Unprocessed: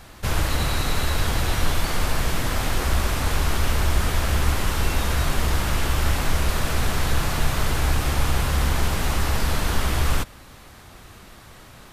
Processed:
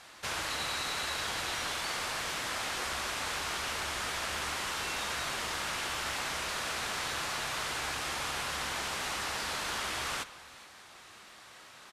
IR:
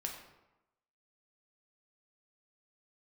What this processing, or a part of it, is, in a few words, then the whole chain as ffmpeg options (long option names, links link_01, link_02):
compressed reverb return: -filter_complex "[0:a]highpass=frequency=1100:poles=1,asplit=2[link_01][link_02];[1:a]atrim=start_sample=2205[link_03];[link_02][link_03]afir=irnorm=-1:irlink=0,acompressor=threshold=-35dB:ratio=6,volume=-3dB[link_04];[link_01][link_04]amix=inputs=2:normalize=0,lowpass=8900,aecho=1:1:419:0.0841,volume=-6dB"